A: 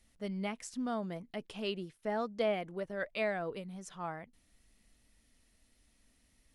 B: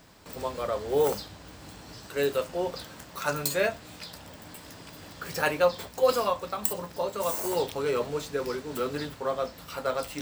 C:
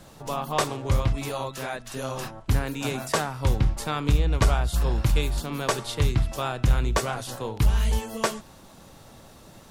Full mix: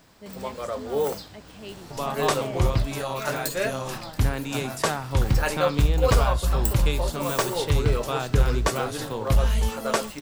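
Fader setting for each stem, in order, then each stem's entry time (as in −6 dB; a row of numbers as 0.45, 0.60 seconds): −4.0, −1.0, +0.5 decibels; 0.00, 0.00, 1.70 seconds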